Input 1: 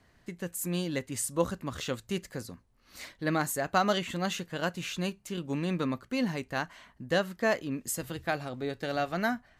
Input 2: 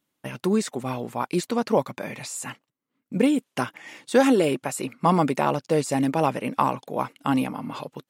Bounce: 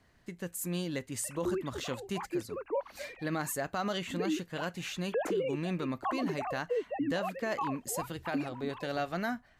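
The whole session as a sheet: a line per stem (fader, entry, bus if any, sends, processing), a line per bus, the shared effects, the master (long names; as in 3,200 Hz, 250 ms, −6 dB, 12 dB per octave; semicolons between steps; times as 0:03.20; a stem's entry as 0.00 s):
−2.5 dB, 0.00 s, no send, no processing
−10.5 dB, 1.00 s, no send, three sine waves on the formant tracks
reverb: not used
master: brickwall limiter −24 dBFS, peak gain reduction 8.5 dB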